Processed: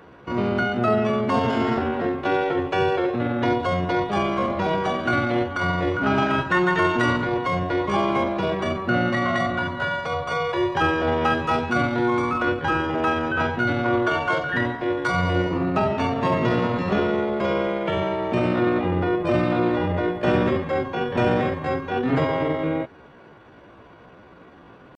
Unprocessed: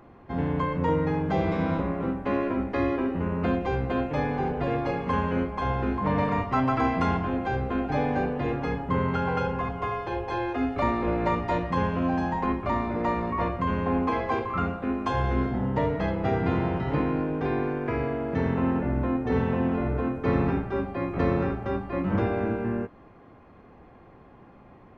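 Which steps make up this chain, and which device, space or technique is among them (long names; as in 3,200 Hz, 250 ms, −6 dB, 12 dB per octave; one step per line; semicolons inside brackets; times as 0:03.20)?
high-pass filter 52 Hz 6 dB per octave
chipmunk voice (pitch shifter +5.5 semitones)
level +4.5 dB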